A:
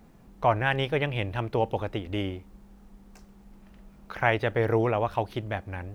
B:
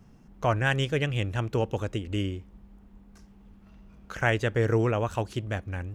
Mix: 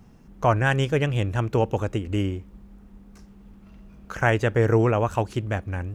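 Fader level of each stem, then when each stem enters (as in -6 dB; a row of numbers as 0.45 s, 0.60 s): -6.0 dB, +2.5 dB; 0.00 s, 0.00 s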